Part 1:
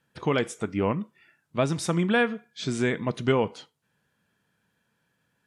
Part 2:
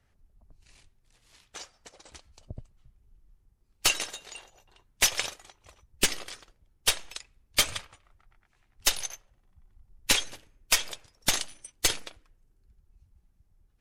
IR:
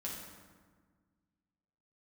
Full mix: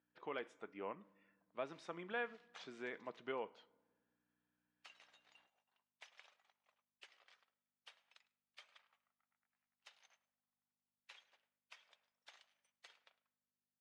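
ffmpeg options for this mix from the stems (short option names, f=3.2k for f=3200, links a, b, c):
-filter_complex "[0:a]aeval=exprs='val(0)+0.00224*(sin(2*PI*60*n/s)+sin(2*PI*2*60*n/s)/2+sin(2*PI*3*60*n/s)/3+sin(2*PI*4*60*n/s)/4+sin(2*PI*5*60*n/s)/5)':c=same,volume=-17dB,asplit=2[a][b];[b]volume=-22dB[c];[1:a]highpass=640,acompressor=threshold=-33dB:ratio=6,adelay=1000,volume=-9.5dB,afade=t=out:st=2.54:d=0.74:silence=0.266073,asplit=3[d][e][f];[e]volume=-21dB[g];[f]volume=-20.5dB[h];[2:a]atrim=start_sample=2205[i];[c][g]amix=inputs=2:normalize=0[j];[j][i]afir=irnorm=-1:irlink=0[k];[h]aecho=0:1:105:1[l];[a][d][k][l]amix=inputs=4:normalize=0,aeval=exprs='val(0)+0.0001*(sin(2*PI*50*n/s)+sin(2*PI*2*50*n/s)/2+sin(2*PI*3*50*n/s)/3+sin(2*PI*4*50*n/s)/4+sin(2*PI*5*50*n/s)/5)':c=same,highpass=450,lowpass=2.9k"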